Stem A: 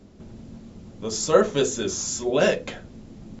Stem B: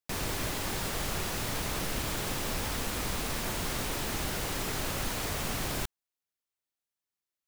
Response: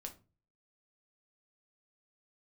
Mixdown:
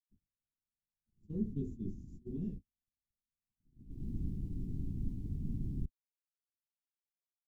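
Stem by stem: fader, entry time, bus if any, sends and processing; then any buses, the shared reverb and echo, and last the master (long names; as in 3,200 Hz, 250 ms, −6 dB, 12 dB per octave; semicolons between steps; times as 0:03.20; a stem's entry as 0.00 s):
0:00.95 −19.5 dB → 0:01.35 −6.5 dB → 0:02.26 −6.5 dB → 0:02.87 −16.5 dB, 0.00 s, no send, no processing
0.0 dB, 0.00 s, send −21.5 dB, automatic ducking −10 dB, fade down 0.25 s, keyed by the first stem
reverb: on, RT60 0.35 s, pre-delay 5 ms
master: noise gate −33 dBFS, range −58 dB; inverse Chebyshev low-pass filter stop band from 530 Hz, stop band 40 dB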